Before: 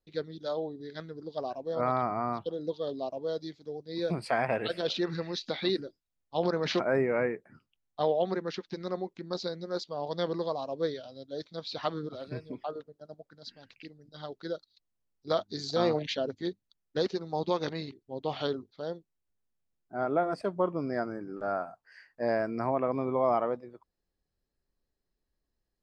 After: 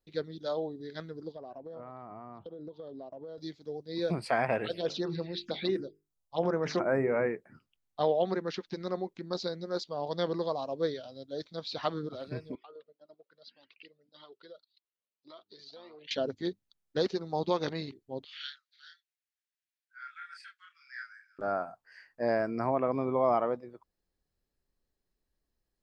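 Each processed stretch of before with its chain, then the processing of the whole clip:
1.32–3.38 s: low-pass 1.2 kHz 6 dB/octave + compression 12:1, threshold -40 dBFS
4.65–7.26 s: hum notches 50/100/150/200/250/300/350/400/450 Hz + touch-sensitive phaser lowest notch 270 Hz, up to 4.3 kHz, full sweep at -26 dBFS
12.55–16.11 s: compression 5:1, threshold -39 dBFS + cabinet simulation 380–4400 Hz, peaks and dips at 770 Hz -8 dB, 1.6 kHz -6 dB, 2.9 kHz +4 dB + Shepard-style flanger rising 1.8 Hz
18.24–21.39 s: steep high-pass 1.5 kHz 72 dB/octave + treble shelf 5.4 kHz -9 dB + doubling 30 ms -2.5 dB
whole clip: none

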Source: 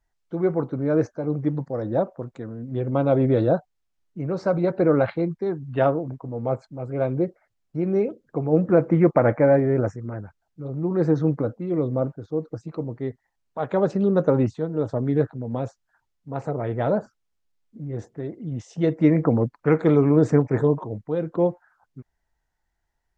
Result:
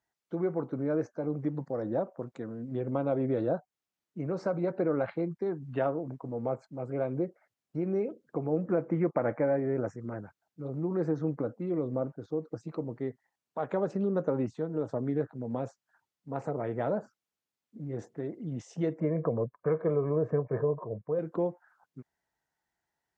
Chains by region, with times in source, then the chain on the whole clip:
19.00–21.19 s: low-pass 1.3 kHz + comb 1.8 ms
whole clip: high-pass 150 Hz 12 dB/octave; compression 2:1, threshold -27 dBFS; dynamic bell 3.8 kHz, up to -6 dB, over -58 dBFS, Q 1.8; trim -3 dB

